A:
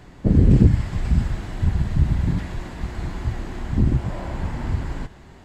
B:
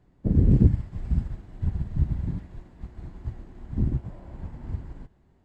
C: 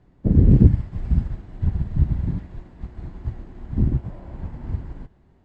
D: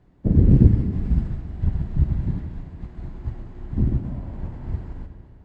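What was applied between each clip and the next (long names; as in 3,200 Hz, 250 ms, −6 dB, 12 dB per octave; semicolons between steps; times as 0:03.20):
tilt shelving filter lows +5.5 dB, about 860 Hz; expander for the loud parts 1.5 to 1, over −29 dBFS; level −8 dB
high-frequency loss of the air 58 metres; level +5 dB
comb and all-pass reverb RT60 2.3 s, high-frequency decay 0.85×, pre-delay 10 ms, DRR 7 dB; level −1 dB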